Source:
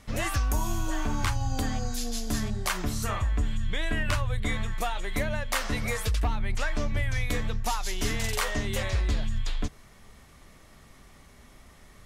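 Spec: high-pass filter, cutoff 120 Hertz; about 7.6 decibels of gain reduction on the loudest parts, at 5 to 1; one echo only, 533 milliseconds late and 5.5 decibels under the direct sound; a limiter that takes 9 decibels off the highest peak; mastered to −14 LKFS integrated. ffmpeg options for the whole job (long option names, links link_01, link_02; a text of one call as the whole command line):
ffmpeg -i in.wav -af "highpass=120,acompressor=threshold=-33dB:ratio=5,alimiter=level_in=5dB:limit=-24dB:level=0:latency=1,volume=-5dB,aecho=1:1:533:0.531,volume=24dB" out.wav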